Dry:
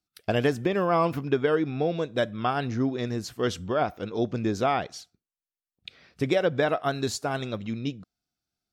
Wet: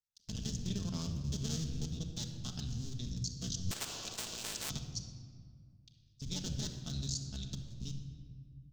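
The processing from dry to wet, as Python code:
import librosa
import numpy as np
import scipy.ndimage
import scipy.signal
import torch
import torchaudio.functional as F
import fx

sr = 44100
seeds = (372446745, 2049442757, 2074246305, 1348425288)

y = fx.cycle_switch(x, sr, every=2, mode='muted')
y = fx.curve_eq(y, sr, hz=(130.0, 380.0, 660.0, 2200.0, 3300.0, 6500.0, 9500.0), db=(0, -23, -30, -26, -6, 6, -17))
y = fx.level_steps(y, sr, step_db=21)
y = fx.room_shoebox(y, sr, seeds[0], volume_m3=3000.0, walls='mixed', distance_m=1.5)
y = fx.spectral_comp(y, sr, ratio=10.0, at=(3.71, 4.7))
y = y * librosa.db_to_amplitude(2.5)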